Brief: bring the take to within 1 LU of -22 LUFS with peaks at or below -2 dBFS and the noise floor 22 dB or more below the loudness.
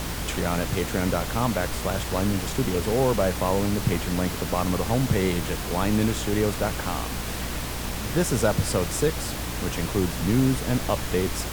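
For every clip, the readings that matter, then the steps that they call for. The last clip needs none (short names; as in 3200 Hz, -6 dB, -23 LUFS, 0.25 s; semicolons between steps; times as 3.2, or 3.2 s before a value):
hum 60 Hz; harmonics up to 300 Hz; hum level -33 dBFS; noise floor -31 dBFS; noise floor target -48 dBFS; loudness -25.5 LUFS; peak -9.0 dBFS; loudness target -22.0 LUFS
-> de-hum 60 Hz, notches 5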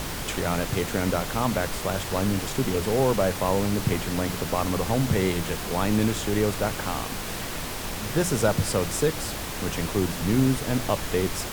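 hum none; noise floor -33 dBFS; noise floor target -48 dBFS
-> noise print and reduce 15 dB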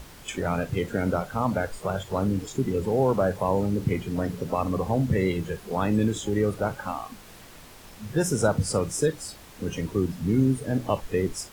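noise floor -47 dBFS; noise floor target -49 dBFS
-> noise print and reduce 6 dB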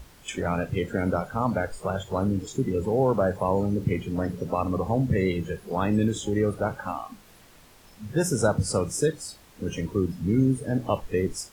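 noise floor -53 dBFS; loudness -26.5 LUFS; peak -10.0 dBFS; loudness target -22.0 LUFS
-> gain +4.5 dB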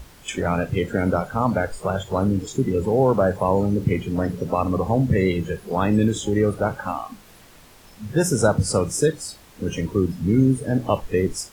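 loudness -22.0 LUFS; peak -5.5 dBFS; noise floor -49 dBFS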